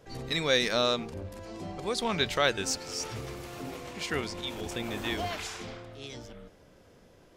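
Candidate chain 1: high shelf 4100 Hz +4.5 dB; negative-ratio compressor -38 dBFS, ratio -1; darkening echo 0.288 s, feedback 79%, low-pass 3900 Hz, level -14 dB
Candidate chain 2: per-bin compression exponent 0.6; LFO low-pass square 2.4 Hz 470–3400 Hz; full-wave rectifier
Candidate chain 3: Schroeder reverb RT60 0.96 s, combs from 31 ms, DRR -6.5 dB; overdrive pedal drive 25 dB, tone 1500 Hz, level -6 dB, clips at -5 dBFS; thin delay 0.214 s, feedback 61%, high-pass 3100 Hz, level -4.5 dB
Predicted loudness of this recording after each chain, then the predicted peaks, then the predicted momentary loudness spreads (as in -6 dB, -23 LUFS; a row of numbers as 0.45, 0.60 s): -36.0, -30.0, -17.0 LUFS; -21.5, -7.5, -5.5 dBFS; 8, 15, 12 LU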